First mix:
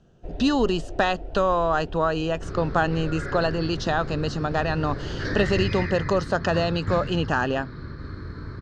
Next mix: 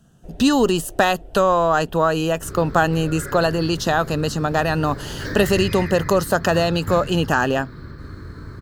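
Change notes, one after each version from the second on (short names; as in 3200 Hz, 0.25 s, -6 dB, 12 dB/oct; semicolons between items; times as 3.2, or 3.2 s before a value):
speech +5.0 dB; first sound -5.0 dB; master: remove LPF 5700 Hz 24 dB/oct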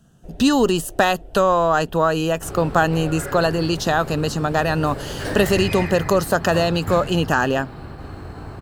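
second sound: remove fixed phaser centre 2800 Hz, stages 6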